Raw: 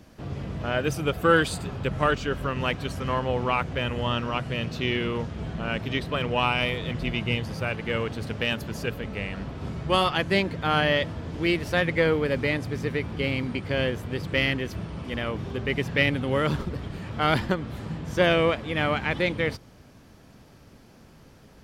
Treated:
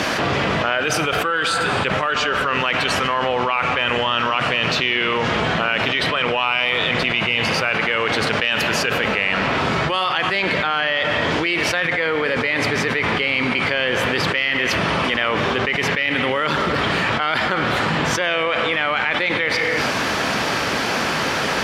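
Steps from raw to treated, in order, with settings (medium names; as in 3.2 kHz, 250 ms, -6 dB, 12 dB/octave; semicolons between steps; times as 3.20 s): band-pass filter 2 kHz, Q 0.63; reverberation, pre-delay 13 ms, DRR 14 dB; level flattener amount 100%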